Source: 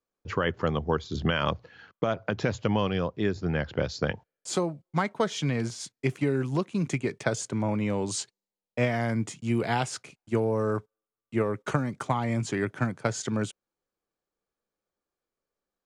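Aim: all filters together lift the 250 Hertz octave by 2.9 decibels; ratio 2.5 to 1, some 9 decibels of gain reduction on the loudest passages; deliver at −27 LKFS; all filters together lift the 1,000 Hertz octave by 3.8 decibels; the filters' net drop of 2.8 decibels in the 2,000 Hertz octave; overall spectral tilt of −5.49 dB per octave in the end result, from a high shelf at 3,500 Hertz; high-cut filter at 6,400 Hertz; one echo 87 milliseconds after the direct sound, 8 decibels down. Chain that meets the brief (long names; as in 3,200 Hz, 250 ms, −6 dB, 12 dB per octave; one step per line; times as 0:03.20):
low-pass filter 6,400 Hz
parametric band 250 Hz +3.5 dB
parametric band 1,000 Hz +6.5 dB
parametric band 2,000 Hz −5 dB
high-shelf EQ 3,500 Hz −6.5 dB
downward compressor 2.5 to 1, threshold −33 dBFS
single-tap delay 87 ms −8 dB
level +8 dB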